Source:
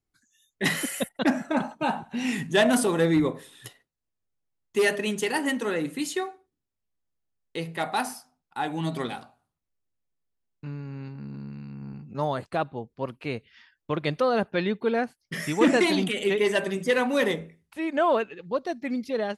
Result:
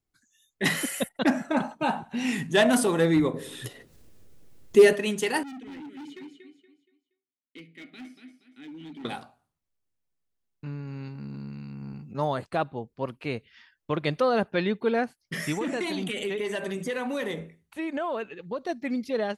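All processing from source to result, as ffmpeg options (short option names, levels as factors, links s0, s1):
-filter_complex "[0:a]asettb=1/sr,asplit=3[s0][s1][s2];[s0]atrim=end=3.344[s3];[s1]atrim=start=3.34:end=4.93,asetpts=PTS-STARTPTS,afade=t=in:d=0.004:c=qsin,afade=t=out:st=1.586:d=0.004:c=qsin,lowshelf=f=620:t=q:w=1.5:g=6.5,acompressor=mode=upward:threshold=0.0355:ratio=2.5:attack=3.2:release=140:knee=2.83:detection=peak[s4];[s2]atrim=start=4.926[s5];[s3][s4]acrossfade=d=0.004:c1=hsin:c2=qsin[s6];[s6][s5]acrossfade=d=0.004:c1=qsin:c2=hsin,asettb=1/sr,asplit=3[s7][s8][s9];[s7]atrim=end=5.434[s10];[s8]atrim=start=5.43:end=9.05,asetpts=PTS-STARTPTS,afade=t=in:d=0.004:c=qsin,afade=t=out:st=3.616:d=0.004:c=qsin,asplit=3[s11][s12][s13];[s11]bandpass=f=270:t=q:w=8,volume=1[s14];[s12]bandpass=f=2290:t=q:w=8,volume=0.501[s15];[s13]bandpass=f=3010:t=q:w=8,volume=0.355[s16];[s14][s15][s16]amix=inputs=3:normalize=0,aecho=1:1:236|472|708|944:0.398|0.131|0.0434|0.0143,atrim=end_sample=159642,asoftclip=type=hard:threshold=0.0119[s17];[s9]atrim=start=9.046[s18];[s10][s17]acrossfade=d=0.004:c1=hsin:c2=qsin[s19];[s19][s18]acrossfade=d=0.004:c1=qsin:c2=hsin,asettb=1/sr,asplit=3[s20][s21][s22];[s20]atrim=end=10.874[s23];[s21]atrim=start=10.87:end=12.13,asetpts=PTS-STARTPTS,afade=t=in:d=0.004:c=qsin,afade=t=out:st=1.256:d=0.004:c=qsin,highshelf=f=3400:g=6.5,bandreject=f=1700:w=17[s24];[s22]atrim=start=12.126[s25];[s23][s24]acrossfade=d=0.004:c1=hsin:c2=qsin[s26];[s26][s25]acrossfade=d=0.004:c1=qsin:c2=hsin,asettb=1/sr,asplit=3[s27][s28][s29];[s27]atrim=end=15.554[s30];[s28]atrim=start=15.55:end=18.69,asetpts=PTS-STARTPTS,afade=t=in:d=0.004:c=qsin,afade=t=out:st=3.136:d=0.004:c=qsin,bandreject=f=5100:w=9,acompressor=threshold=0.0447:ratio=5:attack=3.2:release=140:knee=1:detection=peak[s31];[s29]atrim=start=18.686[s32];[s30][s31]acrossfade=d=0.004:c1=hsin:c2=qsin[s33];[s33][s32]acrossfade=d=0.004:c1=qsin:c2=hsin"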